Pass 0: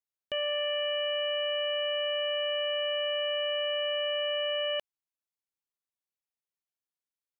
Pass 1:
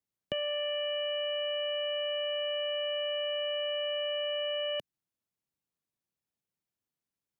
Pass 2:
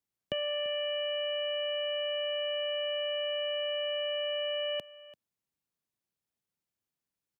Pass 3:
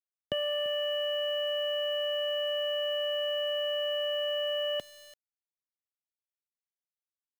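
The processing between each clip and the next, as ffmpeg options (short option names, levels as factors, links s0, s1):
-filter_complex "[0:a]equalizer=f=150:w=0.42:g=14,acrossover=split=300|3000[s0][s1][s2];[s1]acompressor=threshold=0.0224:ratio=6[s3];[s0][s3][s2]amix=inputs=3:normalize=0"
-af "aecho=1:1:340:0.119"
-af "asuperstop=centerf=2500:order=8:qfactor=5,aeval=exprs='val(0)*gte(abs(val(0)),0.00376)':c=same,volume=1.26"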